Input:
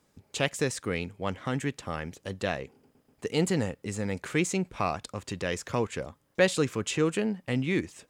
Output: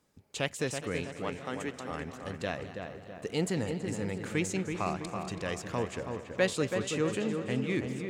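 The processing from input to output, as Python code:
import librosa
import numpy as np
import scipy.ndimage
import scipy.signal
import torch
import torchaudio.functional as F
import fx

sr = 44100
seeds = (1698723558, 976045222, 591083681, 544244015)

y = fx.highpass(x, sr, hz=280.0, slope=12, at=(1.05, 1.91))
y = fx.echo_filtered(y, sr, ms=328, feedback_pct=52, hz=2100.0, wet_db=-5.5)
y = fx.echo_warbled(y, sr, ms=206, feedback_pct=70, rate_hz=2.8, cents=103, wet_db=-15.0)
y = F.gain(torch.from_numpy(y), -4.5).numpy()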